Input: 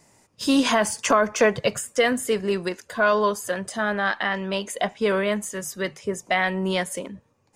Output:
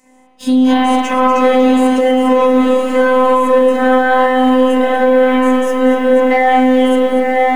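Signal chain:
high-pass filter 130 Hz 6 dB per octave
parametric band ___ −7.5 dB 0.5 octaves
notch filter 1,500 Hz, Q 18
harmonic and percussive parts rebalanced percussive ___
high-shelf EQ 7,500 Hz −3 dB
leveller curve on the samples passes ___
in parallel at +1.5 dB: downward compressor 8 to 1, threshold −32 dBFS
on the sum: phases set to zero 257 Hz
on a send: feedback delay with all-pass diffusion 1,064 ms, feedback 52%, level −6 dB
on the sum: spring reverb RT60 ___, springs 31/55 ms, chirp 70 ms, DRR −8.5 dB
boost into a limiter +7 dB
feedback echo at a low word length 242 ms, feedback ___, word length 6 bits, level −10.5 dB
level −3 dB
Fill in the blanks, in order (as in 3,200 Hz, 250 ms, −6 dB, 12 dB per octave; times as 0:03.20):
4,900 Hz, −14 dB, 1, 1.2 s, 35%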